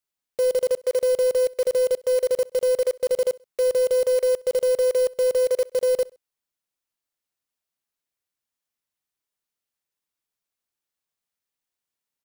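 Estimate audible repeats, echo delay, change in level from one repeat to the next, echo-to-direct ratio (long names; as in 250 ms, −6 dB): 2, 65 ms, −8.5 dB, −23.5 dB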